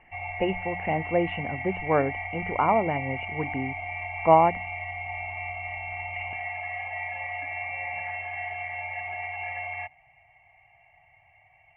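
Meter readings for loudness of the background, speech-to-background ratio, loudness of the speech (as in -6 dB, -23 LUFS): -33.0 LUFS, 6.5 dB, -26.5 LUFS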